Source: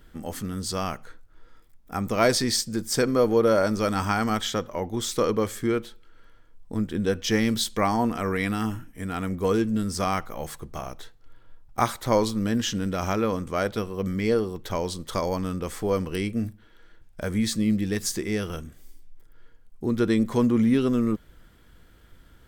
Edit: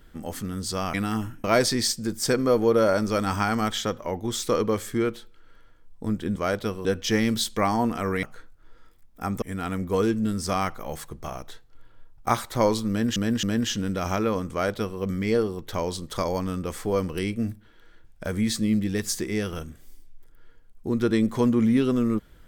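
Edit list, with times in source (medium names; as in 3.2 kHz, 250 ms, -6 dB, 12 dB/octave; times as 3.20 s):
0.94–2.13 s: swap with 8.43–8.93 s
12.40–12.67 s: loop, 3 plays
13.48–13.97 s: copy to 7.05 s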